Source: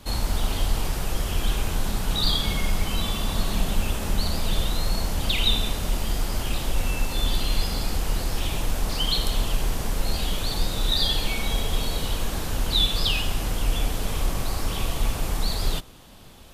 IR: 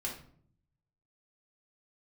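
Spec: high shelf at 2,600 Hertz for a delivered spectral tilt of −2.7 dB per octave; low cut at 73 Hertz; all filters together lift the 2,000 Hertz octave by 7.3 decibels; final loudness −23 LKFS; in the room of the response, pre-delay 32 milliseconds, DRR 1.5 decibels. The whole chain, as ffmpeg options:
-filter_complex "[0:a]highpass=73,equalizer=frequency=2000:width_type=o:gain=6,highshelf=frequency=2600:gain=6.5,asplit=2[link_01][link_02];[1:a]atrim=start_sample=2205,adelay=32[link_03];[link_02][link_03]afir=irnorm=-1:irlink=0,volume=-3dB[link_04];[link_01][link_04]amix=inputs=2:normalize=0,volume=-2.5dB"

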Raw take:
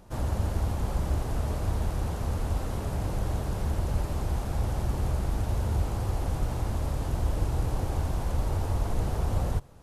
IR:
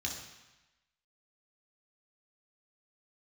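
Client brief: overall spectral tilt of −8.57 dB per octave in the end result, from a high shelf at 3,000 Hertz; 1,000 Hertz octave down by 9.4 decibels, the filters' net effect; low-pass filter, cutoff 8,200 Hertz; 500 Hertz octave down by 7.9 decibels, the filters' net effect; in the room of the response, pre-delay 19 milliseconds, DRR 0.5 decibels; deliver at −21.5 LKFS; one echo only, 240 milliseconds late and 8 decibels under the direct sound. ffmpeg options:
-filter_complex "[0:a]lowpass=8200,equalizer=frequency=500:width_type=o:gain=-7.5,equalizer=frequency=1000:width_type=o:gain=-9,highshelf=frequency=3000:gain=-5.5,aecho=1:1:240:0.398,asplit=2[link_01][link_02];[1:a]atrim=start_sample=2205,adelay=19[link_03];[link_02][link_03]afir=irnorm=-1:irlink=0,volume=-2.5dB[link_04];[link_01][link_04]amix=inputs=2:normalize=0,volume=3dB"

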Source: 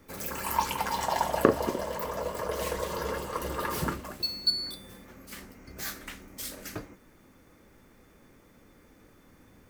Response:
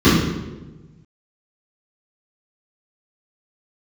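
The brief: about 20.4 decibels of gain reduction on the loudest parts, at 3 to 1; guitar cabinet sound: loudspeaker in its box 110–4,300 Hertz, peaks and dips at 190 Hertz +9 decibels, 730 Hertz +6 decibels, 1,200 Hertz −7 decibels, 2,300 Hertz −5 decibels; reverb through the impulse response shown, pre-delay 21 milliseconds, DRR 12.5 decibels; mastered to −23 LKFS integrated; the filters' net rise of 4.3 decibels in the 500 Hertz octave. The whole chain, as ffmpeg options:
-filter_complex "[0:a]equalizer=frequency=500:width_type=o:gain=4,acompressor=threshold=-41dB:ratio=3,asplit=2[link_01][link_02];[1:a]atrim=start_sample=2205,adelay=21[link_03];[link_02][link_03]afir=irnorm=-1:irlink=0,volume=-38dB[link_04];[link_01][link_04]amix=inputs=2:normalize=0,highpass=110,equalizer=frequency=190:width_type=q:width=4:gain=9,equalizer=frequency=730:width_type=q:width=4:gain=6,equalizer=frequency=1200:width_type=q:width=4:gain=-7,equalizer=frequency=2300:width_type=q:width=4:gain=-5,lowpass=frequency=4300:width=0.5412,lowpass=frequency=4300:width=1.3066,volume=18dB"

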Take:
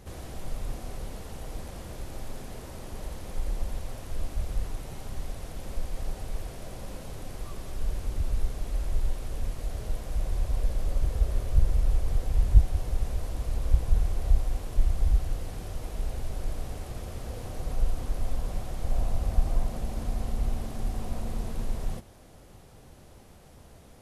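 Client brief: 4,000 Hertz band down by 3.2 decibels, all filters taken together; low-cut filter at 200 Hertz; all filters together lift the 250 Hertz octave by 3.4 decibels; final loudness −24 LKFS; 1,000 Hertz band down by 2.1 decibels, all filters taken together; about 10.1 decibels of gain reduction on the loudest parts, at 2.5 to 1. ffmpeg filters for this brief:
ffmpeg -i in.wav -af "highpass=200,equalizer=frequency=250:width_type=o:gain=7,equalizer=frequency=1000:width_type=o:gain=-3.5,equalizer=frequency=4000:width_type=o:gain=-4,acompressor=threshold=-44dB:ratio=2.5,volume=23dB" out.wav

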